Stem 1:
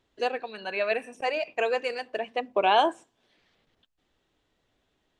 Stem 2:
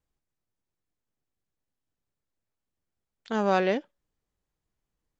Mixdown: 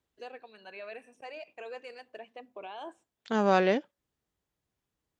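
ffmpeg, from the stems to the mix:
-filter_complex "[0:a]alimiter=limit=-20dB:level=0:latency=1:release=16,volume=-14dB,afade=t=out:st=2.88:d=0.22:silence=0.473151[a];[1:a]volume=0dB[b];[a][b]amix=inputs=2:normalize=0,highpass=59"

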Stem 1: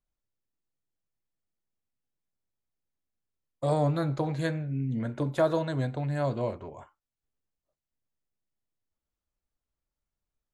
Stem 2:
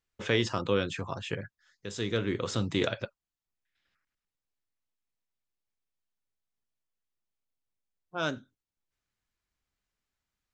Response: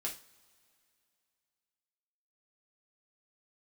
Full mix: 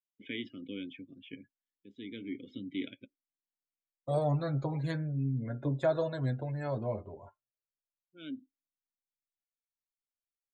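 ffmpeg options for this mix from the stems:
-filter_complex "[0:a]flanger=delay=7:depth=3.3:regen=25:speed=0.21:shape=sinusoidal,adelay=450,volume=-1dB,asplit=2[a][b];[b]volume=-23.5dB[c];[1:a]asplit=3[d][e][f];[d]bandpass=f=270:t=q:w=8,volume=0dB[g];[e]bandpass=f=2.29k:t=q:w=8,volume=-6dB[h];[f]bandpass=f=3.01k:t=q:w=8,volume=-9dB[i];[g][h][i]amix=inputs=3:normalize=0,volume=0.5dB,asplit=2[j][k];[k]volume=-23dB[l];[2:a]atrim=start_sample=2205[m];[c][l]amix=inputs=2:normalize=0[n];[n][m]afir=irnorm=-1:irlink=0[o];[a][j][o]amix=inputs=3:normalize=0,afftdn=nr=22:nf=-51,equalizer=f=1.1k:w=1.8:g=-3"

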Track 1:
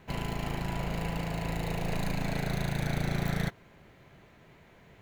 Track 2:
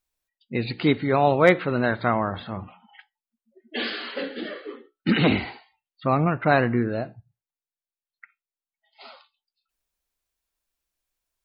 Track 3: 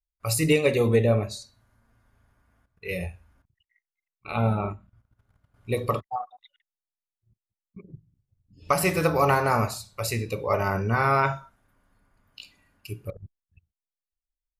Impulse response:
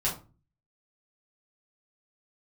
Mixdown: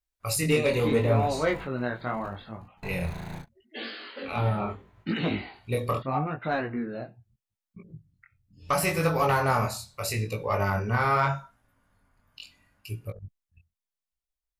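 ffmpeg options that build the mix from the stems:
-filter_complex "[0:a]dynaudnorm=f=130:g=17:m=5dB,equalizer=f=1k:w=2:g=9.5,acrossover=split=340[a][b];[b]acompressor=threshold=-30dB:ratio=6[c];[a][c]amix=inputs=2:normalize=0,adelay=550,volume=-7.5dB[d];[1:a]volume=-5.5dB[e];[2:a]equalizer=f=360:w=2.4:g=-4.5,volume=2.5dB,asplit=2[f][g];[g]apad=whole_len=245274[h];[d][h]sidechaingate=range=-59dB:threshold=-58dB:ratio=16:detection=peak[i];[i][e][f]amix=inputs=3:normalize=0,asoftclip=type=tanh:threshold=-11.5dB,flanger=delay=18:depth=6.7:speed=0.77"

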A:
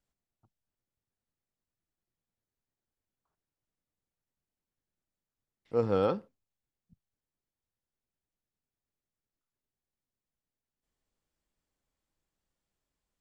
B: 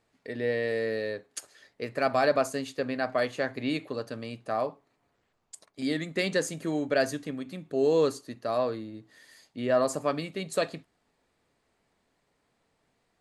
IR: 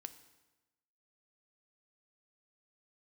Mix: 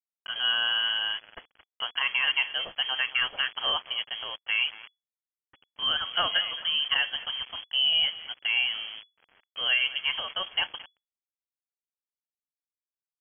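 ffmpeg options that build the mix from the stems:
-filter_complex "[0:a]acompressor=mode=upward:threshold=-35dB:ratio=2.5,adelay=400,volume=-7dB[a];[1:a]alimiter=limit=-18.5dB:level=0:latency=1:release=229,highshelf=f=2.4k:g=11,volume=1.5dB,asplit=2[b][c];[c]volume=-17dB,aecho=0:1:221|442|663|884|1105:1|0.33|0.109|0.0359|0.0119[d];[a][b][d]amix=inputs=3:normalize=0,aeval=exprs='val(0)*gte(abs(val(0)),0.0126)':c=same,lowpass=f=2.9k:t=q:w=0.5098,lowpass=f=2.9k:t=q:w=0.6013,lowpass=f=2.9k:t=q:w=0.9,lowpass=f=2.9k:t=q:w=2.563,afreqshift=-3400"

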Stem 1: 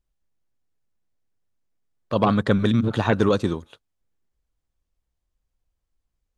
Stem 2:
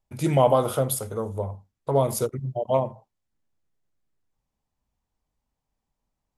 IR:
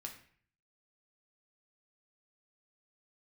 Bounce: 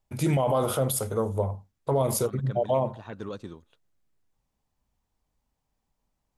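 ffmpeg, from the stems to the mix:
-filter_complex "[0:a]volume=-17dB[a];[1:a]volume=2.5dB,asplit=2[b][c];[c]apad=whole_len=281314[d];[a][d]sidechaincompress=threshold=-26dB:ratio=8:attack=31:release=546[e];[e][b]amix=inputs=2:normalize=0,alimiter=limit=-16dB:level=0:latency=1:release=36"

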